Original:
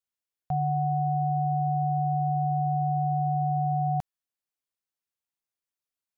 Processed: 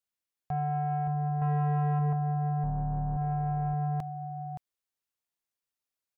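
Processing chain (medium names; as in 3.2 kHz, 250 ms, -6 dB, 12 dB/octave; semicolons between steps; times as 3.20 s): 2.63–3.17 s: octave divider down 2 oct, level -1 dB; peak limiter -22 dBFS, peak gain reduction 4.5 dB; 1.41–2.13 s: comb 6.4 ms, depth 99%; delay 571 ms -9.5 dB; saturation -23.5 dBFS, distortion -14 dB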